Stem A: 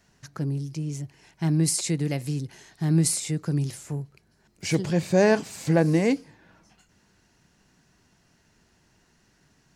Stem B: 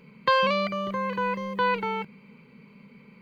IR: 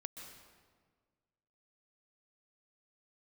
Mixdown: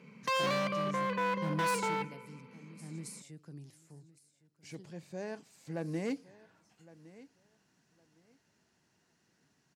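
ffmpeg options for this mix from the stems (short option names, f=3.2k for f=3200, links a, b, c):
-filter_complex "[0:a]volume=1dB,afade=t=out:st=1.57:d=0.52:silence=0.298538,afade=t=in:st=5.62:d=0.74:silence=0.237137,asplit=2[a][b];[b]volume=-19.5dB[c];[1:a]lowpass=5.3k,volume=-5dB,asplit=2[d][e];[e]volume=-7dB[f];[2:a]atrim=start_sample=2205[g];[f][g]afir=irnorm=-1:irlink=0[h];[c]aecho=0:1:1111|2222|3333:1|0.2|0.04[i];[a][d][h][i]amix=inputs=4:normalize=0,volume=28dB,asoftclip=hard,volume=-28dB,highpass=120"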